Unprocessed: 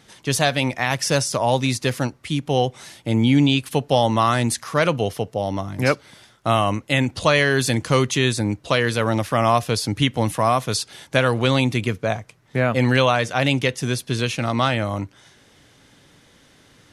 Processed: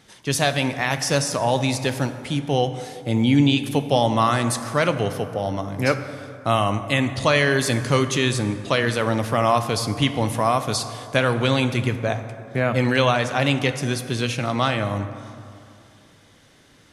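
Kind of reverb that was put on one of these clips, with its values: plate-style reverb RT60 2.6 s, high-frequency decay 0.45×, DRR 9 dB; trim -1.5 dB

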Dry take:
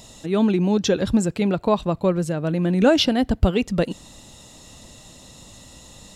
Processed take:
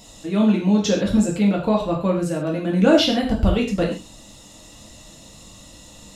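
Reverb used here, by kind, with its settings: gated-style reverb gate 160 ms falling, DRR -2.5 dB; trim -3.5 dB

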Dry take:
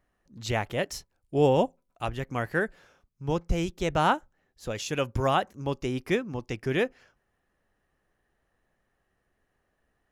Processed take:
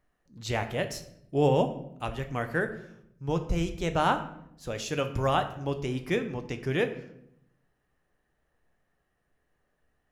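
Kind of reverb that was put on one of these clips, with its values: simulated room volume 170 m³, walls mixed, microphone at 0.43 m; trim -2 dB

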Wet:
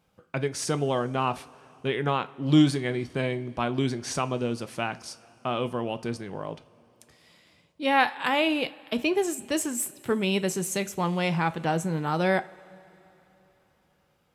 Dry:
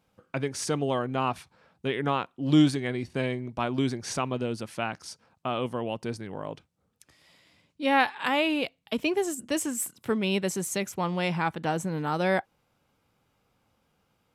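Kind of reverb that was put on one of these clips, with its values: two-slope reverb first 0.28 s, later 3.6 s, from -21 dB, DRR 11.5 dB; trim +1 dB

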